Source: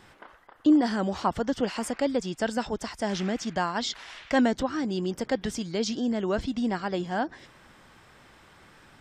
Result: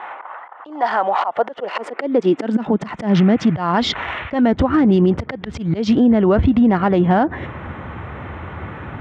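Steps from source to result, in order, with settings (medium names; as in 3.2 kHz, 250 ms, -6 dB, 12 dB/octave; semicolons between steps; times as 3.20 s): local Wiener filter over 9 samples; low-pass 2.5 kHz 12 dB/octave; peaking EQ 61 Hz +3.5 dB 1.9 oct; band-stop 1.6 kHz, Q 15; compression 12:1, threshold -32 dBFS, peak gain reduction 17 dB; slow attack 169 ms; high-pass sweep 820 Hz -> 80 Hz, 1.14–3.81 s; loudness maximiser +29 dB; trim -6 dB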